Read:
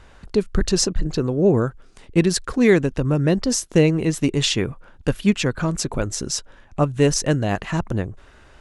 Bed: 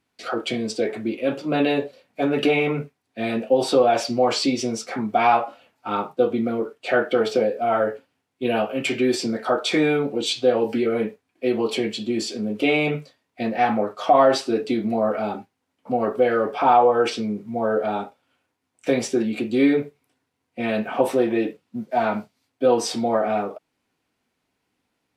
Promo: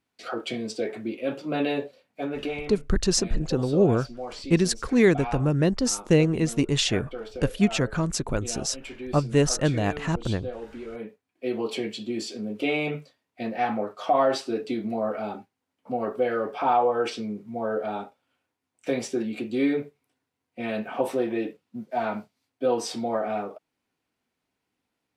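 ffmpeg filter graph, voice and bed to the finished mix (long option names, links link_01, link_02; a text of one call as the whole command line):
ffmpeg -i stem1.wav -i stem2.wav -filter_complex "[0:a]adelay=2350,volume=-3.5dB[link_01];[1:a]volume=5dB,afade=type=out:start_time=1.86:duration=0.88:silence=0.281838,afade=type=in:start_time=10.87:duration=0.71:silence=0.298538[link_02];[link_01][link_02]amix=inputs=2:normalize=0" out.wav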